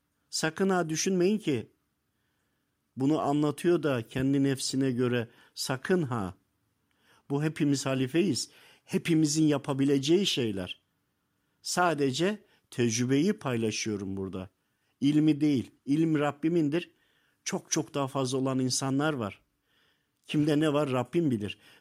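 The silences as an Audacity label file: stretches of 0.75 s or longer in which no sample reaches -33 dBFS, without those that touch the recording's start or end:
1.610000	2.980000	silence
6.290000	7.300000	silence
10.720000	11.660000	silence
19.290000	20.300000	silence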